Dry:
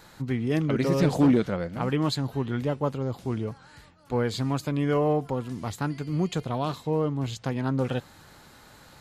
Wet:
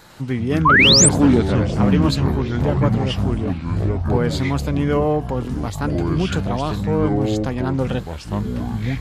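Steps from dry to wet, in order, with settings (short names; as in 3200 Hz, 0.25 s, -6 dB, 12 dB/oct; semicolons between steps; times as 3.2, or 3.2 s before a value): echoes that change speed 0.101 s, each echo -6 st, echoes 3; painted sound rise, 0.65–1.09, 960–9500 Hz -17 dBFS; gain +5 dB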